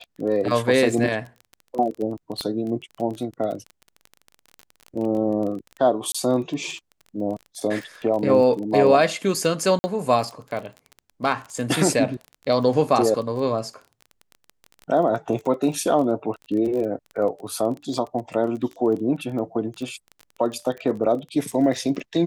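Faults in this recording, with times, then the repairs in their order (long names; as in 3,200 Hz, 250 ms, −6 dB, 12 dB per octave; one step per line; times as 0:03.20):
surface crackle 23 per second −30 dBFS
0:02.41: click −15 dBFS
0:06.12–0:06.14: drop-out 25 ms
0:09.79–0:09.84: drop-out 50 ms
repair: click removal
repair the gap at 0:06.12, 25 ms
repair the gap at 0:09.79, 50 ms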